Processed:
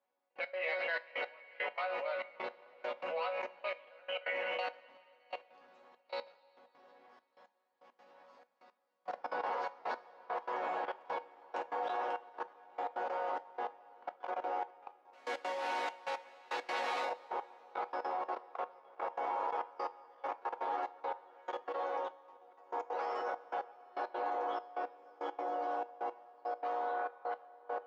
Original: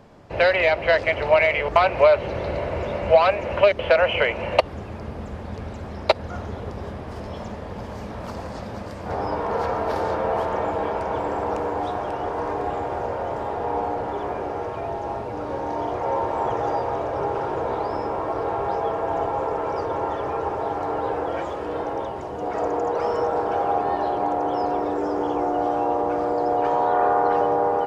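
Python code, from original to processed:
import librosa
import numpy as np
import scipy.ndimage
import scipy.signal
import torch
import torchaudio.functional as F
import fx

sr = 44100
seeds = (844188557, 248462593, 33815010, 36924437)

y = fx.reverse_delay(x, sr, ms=619, wet_db=-11)
y = fx.quant_companded(y, sr, bits=2, at=(15.13, 17.05))
y = fx.resonator_bank(y, sr, root=54, chord='sus4', decay_s=0.33)
y = fx.level_steps(y, sr, step_db=23)
y = fx.step_gate(y, sr, bpm=169, pattern='....x.xxxxx..x', floor_db=-24.0, edge_ms=4.5)
y = fx.bandpass_edges(y, sr, low_hz=610.0, high_hz=4200.0)
y = fx.rev_double_slope(y, sr, seeds[0], early_s=0.25, late_s=3.1, knee_db=-17, drr_db=12.5)
y = y * librosa.db_to_amplitude(12.5)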